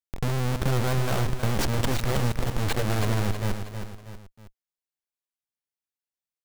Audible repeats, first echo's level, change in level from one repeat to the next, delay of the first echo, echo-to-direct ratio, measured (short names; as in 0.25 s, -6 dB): 3, -8.0 dB, -7.0 dB, 0.319 s, -7.0 dB